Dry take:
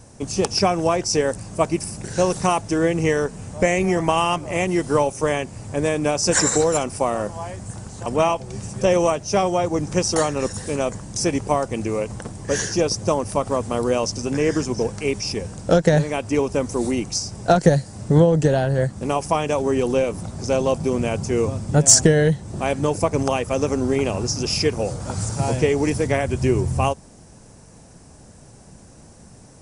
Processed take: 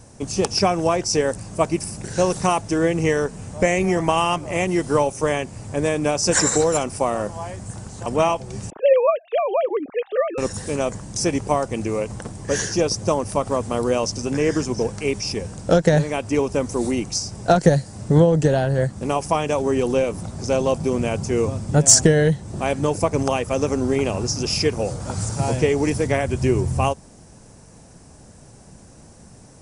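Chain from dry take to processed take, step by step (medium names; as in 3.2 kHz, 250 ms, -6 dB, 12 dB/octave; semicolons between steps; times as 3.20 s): 8.70–10.38 s: formants replaced by sine waves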